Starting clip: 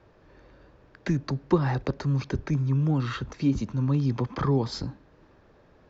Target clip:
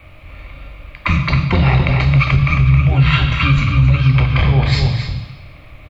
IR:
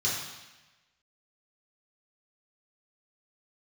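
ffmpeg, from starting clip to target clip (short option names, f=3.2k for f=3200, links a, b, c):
-filter_complex "[0:a]firequalizer=gain_entry='entry(110,0);entry(240,-13);entry(340,-26);entry(610,-4);entry(1400,-28);entry(2200,10);entry(3500,2);entry(6300,-18);entry(9600,9)':delay=0.05:min_phase=1,acrossover=split=310[a][b];[a]acompressor=threshold=-34dB:ratio=8[c];[c][b]amix=inputs=2:normalize=0,asplit=2[d][e];[e]asetrate=22050,aresample=44100,atempo=2,volume=-5dB[f];[d][f]amix=inputs=2:normalize=0,asplit=2[g][h];[h]adelay=268.2,volume=-6dB,highshelf=f=4k:g=-6.04[i];[g][i]amix=inputs=2:normalize=0,asplit=2[j][k];[1:a]atrim=start_sample=2205[l];[k][l]afir=irnorm=-1:irlink=0,volume=-12dB[m];[j][m]amix=inputs=2:normalize=0,alimiter=level_in=21.5dB:limit=-1dB:release=50:level=0:latency=1,volume=-2.5dB"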